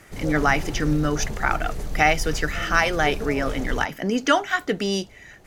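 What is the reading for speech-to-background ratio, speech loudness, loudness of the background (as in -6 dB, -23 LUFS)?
10.0 dB, -23.0 LUFS, -33.0 LUFS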